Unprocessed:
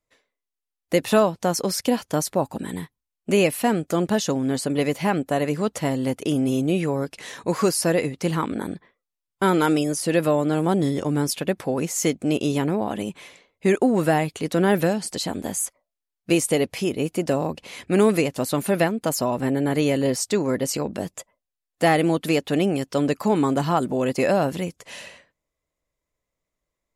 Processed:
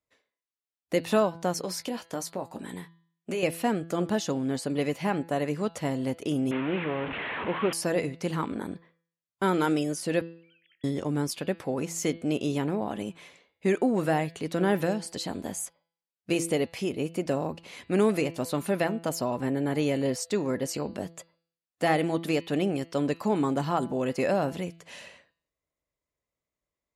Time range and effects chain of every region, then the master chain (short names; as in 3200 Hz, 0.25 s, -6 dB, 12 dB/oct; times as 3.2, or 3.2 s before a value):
1.61–3.43 low shelf 220 Hz -7.5 dB + compressor 4:1, threshold -22 dBFS + doubler 17 ms -10 dB
6.51–7.73 delta modulation 16 kbps, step -20.5 dBFS + low shelf 120 Hz -11 dB
10.21–10.84 sine-wave speech + steep high-pass 1800 Hz 72 dB/oct + compressor 5:1, threshold -58 dBFS
whole clip: HPF 48 Hz; high shelf 8200 Hz -6 dB; de-hum 167 Hz, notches 29; gain -5.5 dB